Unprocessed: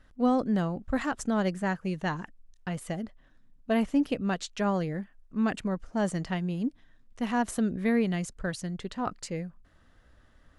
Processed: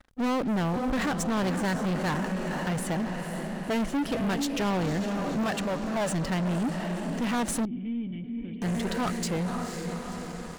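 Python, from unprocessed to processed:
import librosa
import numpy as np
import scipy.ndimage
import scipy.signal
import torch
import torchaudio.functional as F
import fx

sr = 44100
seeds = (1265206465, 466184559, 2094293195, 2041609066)

y = fx.low_shelf_res(x, sr, hz=440.0, db=-8.0, q=1.5, at=(5.43, 6.1))
y = fx.echo_diffused(y, sr, ms=509, feedback_pct=59, wet_db=-10)
y = fx.leveller(y, sr, passes=5)
y = fx.formant_cascade(y, sr, vowel='i', at=(7.65, 8.62))
y = F.gain(torch.from_numpy(y), -9.0).numpy()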